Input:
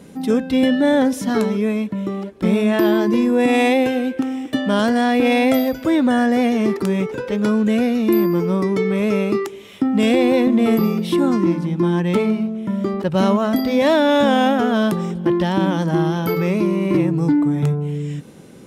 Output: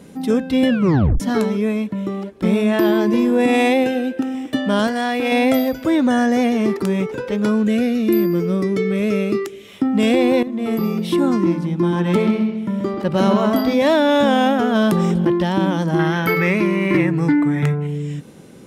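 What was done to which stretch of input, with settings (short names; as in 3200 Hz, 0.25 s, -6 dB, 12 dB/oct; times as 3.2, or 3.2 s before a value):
0.69 tape stop 0.51 s
2.47–3.15 echo throw 0.4 s, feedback 45%, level -17.5 dB
3.84–4.35 notch comb 1100 Hz
4.87–5.32 low shelf 440 Hz -8.5 dB
5.99–6.44 bell 6200 Hz +11 dB 0.21 oct
7.67–9.68 bell 920 Hz -13 dB 0.48 oct
10.43–11.04 fade in, from -14 dB
11.78–13.74 analogue delay 0.131 s, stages 4096, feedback 33%, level -5 dB
14.75–15.29 fast leveller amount 70%
15.99–17.87 bell 1900 Hz +14.5 dB 0.9 oct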